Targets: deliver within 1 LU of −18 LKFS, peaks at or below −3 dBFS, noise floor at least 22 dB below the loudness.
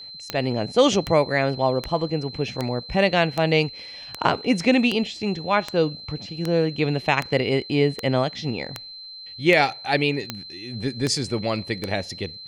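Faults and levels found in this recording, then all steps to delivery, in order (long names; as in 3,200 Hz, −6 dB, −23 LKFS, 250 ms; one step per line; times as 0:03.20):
number of clicks 16; interfering tone 4,100 Hz; level of the tone −37 dBFS; integrated loudness −23.0 LKFS; sample peak −5.5 dBFS; target loudness −18.0 LKFS
→ click removal
notch filter 4,100 Hz, Q 30
level +5 dB
brickwall limiter −3 dBFS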